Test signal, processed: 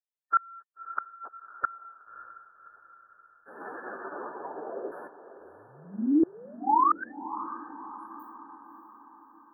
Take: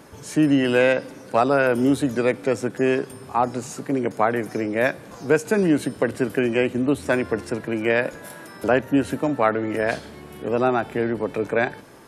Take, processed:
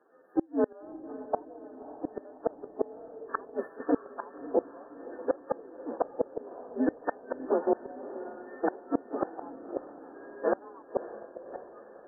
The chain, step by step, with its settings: inharmonic rescaling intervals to 127%; HPF 300 Hz 24 dB/oct; gate -38 dBFS, range -10 dB; bell 410 Hz +4 dB 0.6 oct; AGC gain up to 7 dB; LFO low-pass saw down 0.61 Hz 510–3700 Hz; flipped gate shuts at -10 dBFS, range -34 dB; FFT band-reject 1800–10000 Hz; diffused feedback echo 0.59 s, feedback 53%, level -13 dB; gain -3.5 dB

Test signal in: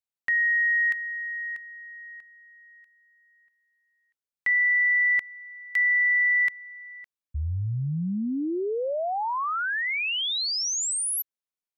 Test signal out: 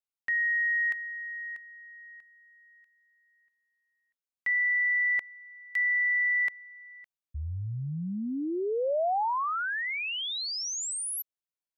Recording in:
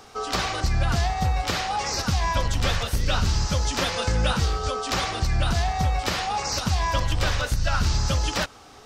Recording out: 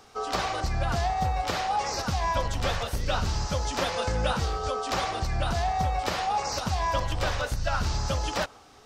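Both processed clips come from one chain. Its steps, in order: dynamic EQ 690 Hz, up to +7 dB, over -41 dBFS, Q 0.78; gain -6 dB

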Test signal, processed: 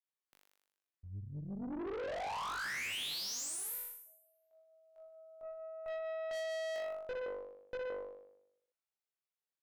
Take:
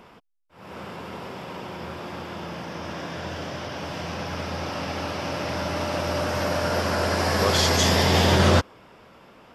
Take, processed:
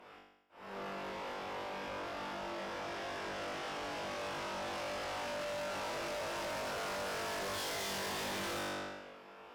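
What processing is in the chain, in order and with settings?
tone controls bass -14 dB, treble -6 dB; flutter echo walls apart 3.5 m, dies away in 0.83 s; tube stage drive 33 dB, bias 0.5; gain -5 dB

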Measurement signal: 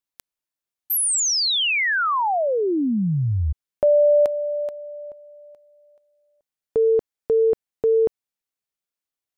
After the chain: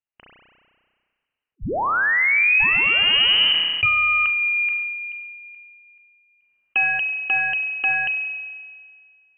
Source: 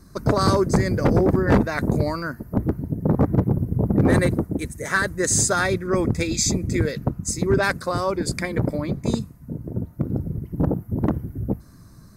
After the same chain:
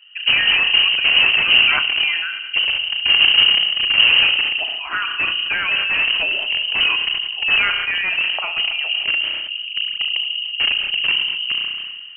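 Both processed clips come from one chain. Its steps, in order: spectral noise reduction 6 dB; treble ducked by the level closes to 570 Hz, closed at -14.5 dBFS; HPF 71 Hz 12 dB/oct; low shelf 380 Hz +8 dB; in parallel at -5 dB: wrapped overs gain 14.5 dB; on the sum: inverted band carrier 3000 Hz; spring tank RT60 1.5 s, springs 32 ms, chirp 30 ms, DRR 9 dB; sustainer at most 31 dB/s; gain -2.5 dB

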